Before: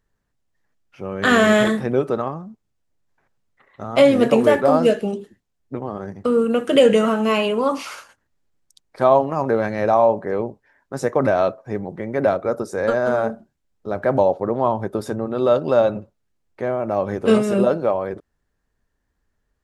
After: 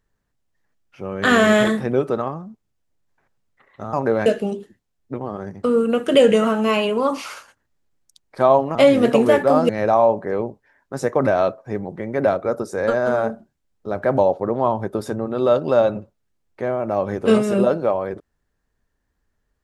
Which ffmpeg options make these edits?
-filter_complex "[0:a]asplit=5[a][b][c][d][e];[a]atrim=end=3.932[f];[b]atrim=start=9.358:end=9.692[g];[c]atrim=start=4.868:end=9.362[h];[d]atrim=start=3.928:end=4.872[i];[e]atrim=start=9.688[j];[f][g]acrossfade=d=0.004:c1=hsin:c2=hsin[k];[k][h]acrossfade=d=0.004:c1=hsin:c2=hsin[l];[l][i]acrossfade=d=0.004:c1=hsin:c2=hsin[m];[m][j]acrossfade=d=0.004:c1=hsin:c2=hsin"

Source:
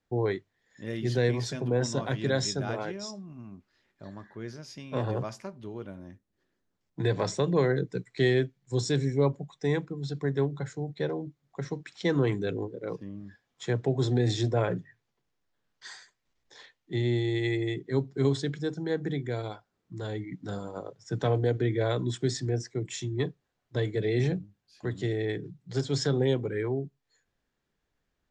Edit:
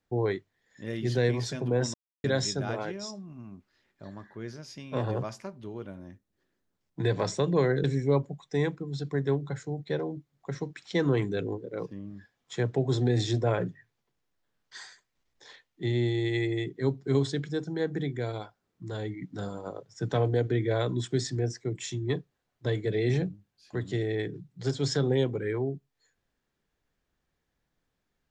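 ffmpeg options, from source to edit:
-filter_complex "[0:a]asplit=4[a][b][c][d];[a]atrim=end=1.94,asetpts=PTS-STARTPTS,afade=t=out:st=1.936:d=0.004:c=hsin[e];[b]atrim=start=1.94:end=2.24,asetpts=PTS-STARTPTS,volume=0[f];[c]atrim=start=2.24:end=7.842,asetpts=PTS-STARTPTS,afade=t=in:d=0.004:c=hsin[g];[d]atrim=start=8.938[h];[e][f][g]concat=n=3:v=0:a=1[i];[i][h]acrossfade=d=0.004:c1=hsin:c2=hsin"

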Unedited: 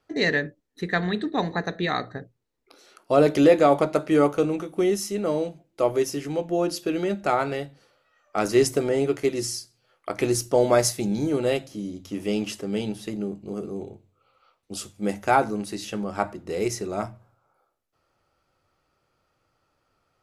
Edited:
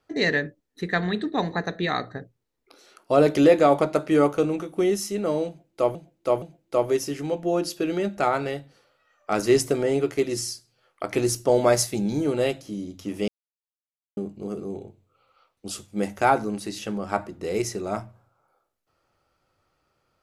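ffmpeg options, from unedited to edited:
-filter_complex "[0:a]asplit=5[a][b][c][d][e];[a]atrim=end=5.952[f];[b]atrim=start=5.478:end=5.952[g];[c]atrim=start=5.478:end=12.34,asetpts=PTS-STARTPTS,afade=t=out:st=6.858:d=0.004:c=hsin[h];[d]atrim=start=12.34:end=13.23,asetpts=PTS-STARTPTS,volume=0[i];[e]atrim=start=13.23,asetpts=PTS-STARTPTS,afade=t=in:d=0.004:c=hsin[j];[f][g]acrossfade=d=0.004:c1=hsin:c2=hsin[k];[h][i][j]concat=n=3:v=0:a=1[l];[k][l]acrossfade=d=0.004:c1=hsin:c2=hsin"

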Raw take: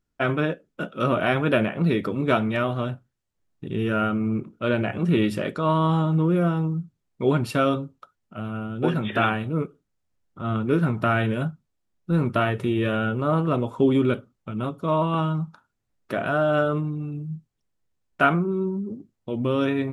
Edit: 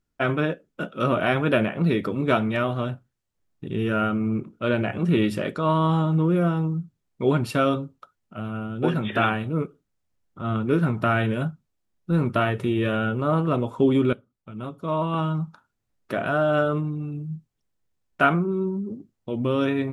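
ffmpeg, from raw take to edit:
-filter_complex "[0:a]asplit=2[a][b];[a]atrim=end=14.13,asetpts=PTS-STARTPTS,afade=t=out:st=14.126:d=0.004:c=hsin:silence=0.199526[c];[b]atrim=start=14.13,asetpts=PTS-STARTPTS,afade=t=in:d=1.27:silence=0.199526[d];[c][d]concat=n=2:v=0:a=1"

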